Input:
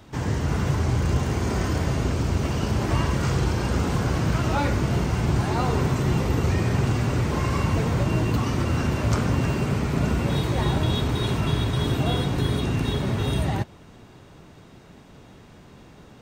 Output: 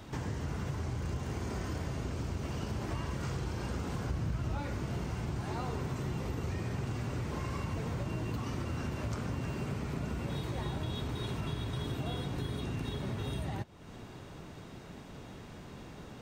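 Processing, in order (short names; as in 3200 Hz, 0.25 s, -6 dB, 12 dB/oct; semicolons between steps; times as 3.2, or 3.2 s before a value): 4.09–4.63 low shelf 150 Hz +11 dB; compressor 3:1, threshold -38 dBFS, peak gain reduction 19 dB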